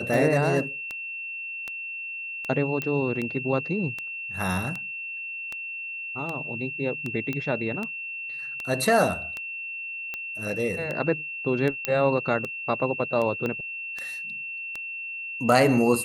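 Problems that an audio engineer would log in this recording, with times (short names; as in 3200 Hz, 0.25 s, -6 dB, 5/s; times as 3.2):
tick 78 rpm
tone 2700 Hz -32 dBFS
2.82 pop -15 dBFS
7.33 pop -17 dBFS
11.85 pop -8 dBFS
13.46 pop -17 dBFS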